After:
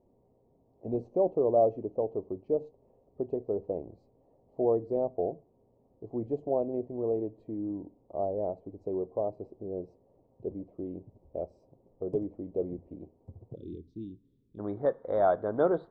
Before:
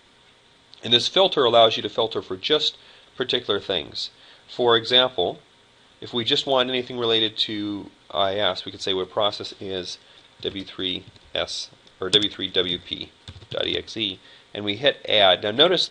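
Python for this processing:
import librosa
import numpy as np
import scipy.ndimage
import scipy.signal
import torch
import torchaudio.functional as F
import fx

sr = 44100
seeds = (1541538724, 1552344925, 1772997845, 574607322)

y = fx.cheby2_lowpass(x, sr, hz=fx.steps((0.0, 1400.0), (13.54, 630.0), (14.58, 2400.0)), order=4, stop_db=40)
y = y * 10.0 ** (-6.0 / 20.0)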